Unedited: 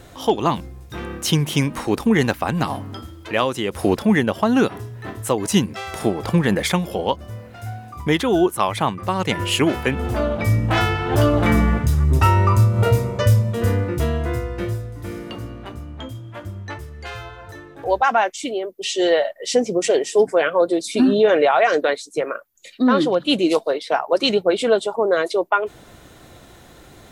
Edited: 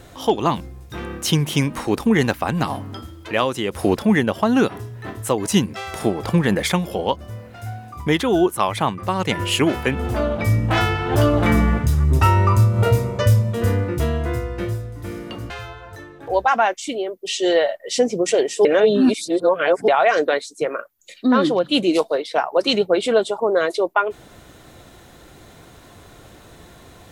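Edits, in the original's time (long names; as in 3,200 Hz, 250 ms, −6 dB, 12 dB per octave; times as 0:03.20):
0:15.50–0:17.06: remove
0:20.21–0:21.44: reverse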